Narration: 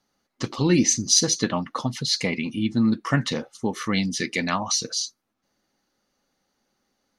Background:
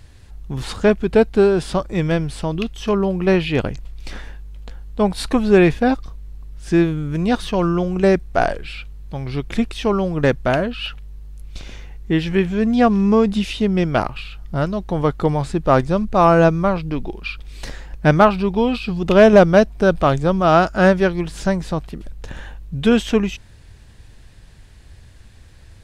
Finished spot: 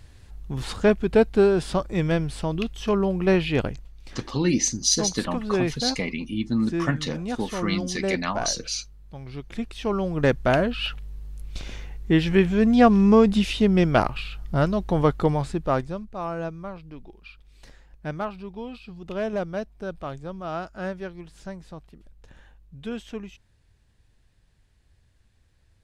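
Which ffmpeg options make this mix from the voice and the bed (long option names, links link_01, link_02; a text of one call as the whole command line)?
ffmpeg -i stem1.wav -i stem2.wav -filter_complex "[0:a]adelay=3750,volume=-3dB[link_01];[1:a]volume=7dB,afade=type=out:start_time=3.63:duration=0.26:silence=0.398107,afade=type=in:start_time=9.55:duration=1.19:silence=0.281838,afade=type=out:start_time=14.97:duration=1.1:silence=0.141254[link_02];[link_01][link_02]amix=inputs=2:normalize=0" out.wav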